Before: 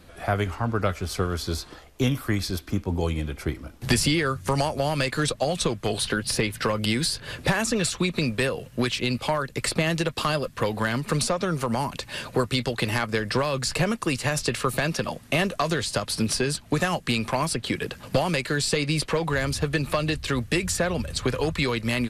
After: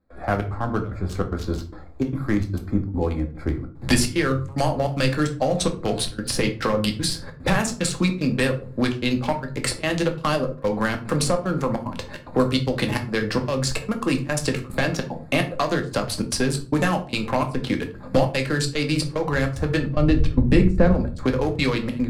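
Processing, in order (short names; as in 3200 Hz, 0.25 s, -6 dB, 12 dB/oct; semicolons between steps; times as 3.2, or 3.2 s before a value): Wiener smoothing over 15 samples; 19.85–20.93 tilt -3 dB/oct; step gate ".xxx.xxx" 148 bpm -24 dB; on a send: reverb RT60 0.40 s, pre-delay 4 ms, DRR 4 dB; on the sum: gain +2 dB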